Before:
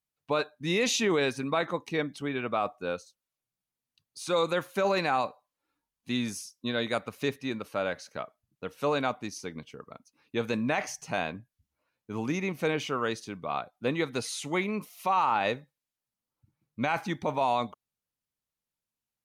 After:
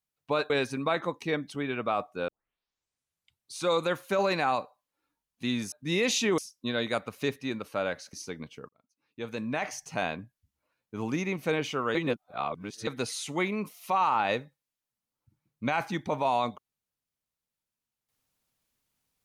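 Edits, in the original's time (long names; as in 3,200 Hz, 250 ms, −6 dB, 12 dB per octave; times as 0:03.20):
0:00.50–0:01.16: move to 0:06.38
0:02.94: tape start 1.30 s
0:08.13–0:09.29: remove
0:09.85–0:11.09: fade in
0:13.11–0:14.03: reverse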